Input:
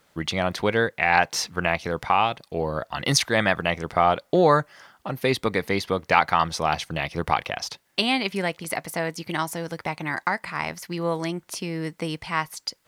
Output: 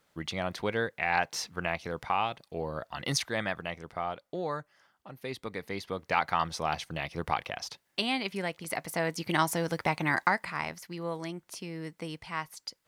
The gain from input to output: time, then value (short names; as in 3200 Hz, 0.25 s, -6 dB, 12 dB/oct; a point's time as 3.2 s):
3.05 s -8.5 dB
4.3 s -16.5 dB
5.16 s -16.5 dB
6.36 s -7.5 dB
8.53 s -7.5 dB
9.43 s +0.5 dB
10.16 s +0.5 dB
10.9 s -9.5 dB